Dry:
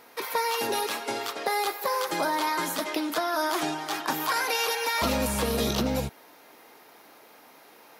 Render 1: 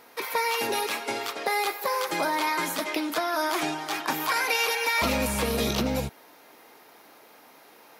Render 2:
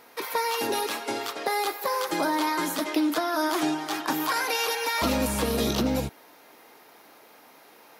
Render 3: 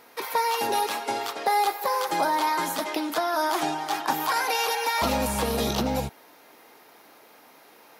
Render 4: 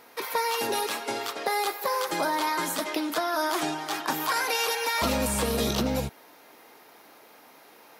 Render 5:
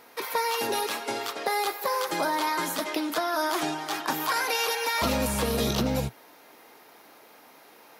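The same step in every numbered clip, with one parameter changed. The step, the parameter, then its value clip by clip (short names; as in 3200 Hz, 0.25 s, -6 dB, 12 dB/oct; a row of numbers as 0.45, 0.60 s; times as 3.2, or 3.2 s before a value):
dynamic EQ, frequency: 2300, 300, 820, 8200, 120 Hz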